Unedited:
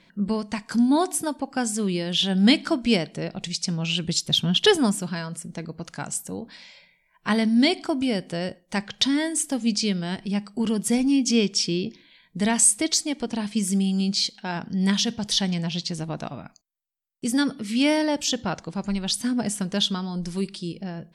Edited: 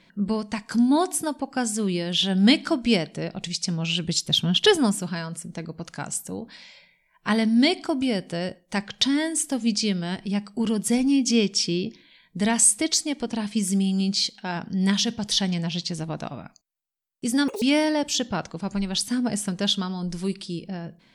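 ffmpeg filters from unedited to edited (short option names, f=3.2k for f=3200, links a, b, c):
-filter_complex "[0:a]asplit=3[a][b][c];[a]atrim=end=17.484[d];[b]atrim=start=17.48:end=17.75,asetpts=PTS-STARTPTS,asetrate=85554,aresample=44100[e];[c]atrim=start=17.746[f];[d][e]acrossfade=d=0.004:c1=hsin:c2=hsin[g];[g][f]acrossfade=d=0.004:c1=hsin:c2=hsin"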